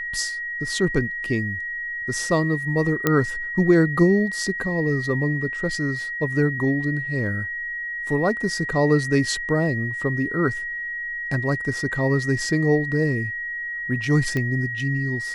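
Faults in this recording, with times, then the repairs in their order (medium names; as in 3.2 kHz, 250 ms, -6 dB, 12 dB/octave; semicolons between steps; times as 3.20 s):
whine 1.9 kHz -27 dBFS
3.07 s: pop -5 dBFS
14.37 s: pop -13 dBFS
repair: de-click; band-stop 1.9 kHz, Q 30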